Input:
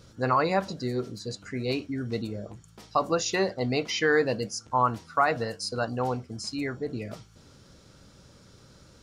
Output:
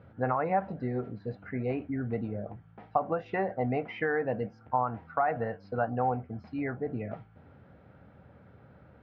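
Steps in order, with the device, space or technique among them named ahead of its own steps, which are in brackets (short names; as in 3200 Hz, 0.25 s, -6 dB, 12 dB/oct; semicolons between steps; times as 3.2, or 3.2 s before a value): LPF 5100 Hz; bass amplifier (compressor 5:1, threshold -25 dBFS, peak gain reduction 7.5 dB; speaker cabinet 80–2100 Hz, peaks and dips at 84 Hz +4 dB, 350 Hz -5 dB, 750 Hz +8 dB, 1100 Hz -5 dB); dynamic EQ 4000 Hz, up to -6 dB, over -56 dBFS, Q 1.8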